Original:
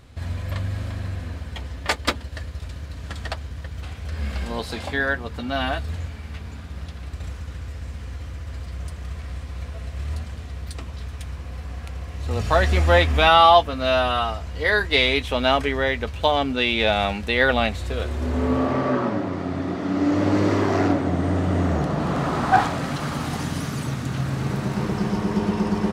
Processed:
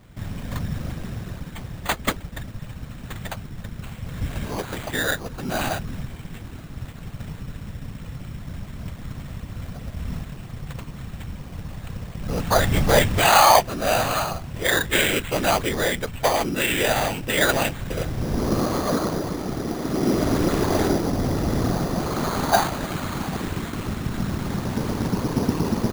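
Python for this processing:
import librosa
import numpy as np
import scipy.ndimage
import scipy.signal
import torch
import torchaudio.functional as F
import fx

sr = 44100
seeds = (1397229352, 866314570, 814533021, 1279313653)

y = fx.whisperise(x, sr, seeds[0])
y = fx.sample_hold(y, sr, seeds[1], rate_hz=5400.0, jitter_pct=0)
y = y * librosa.db_to_amplitude(-1.0)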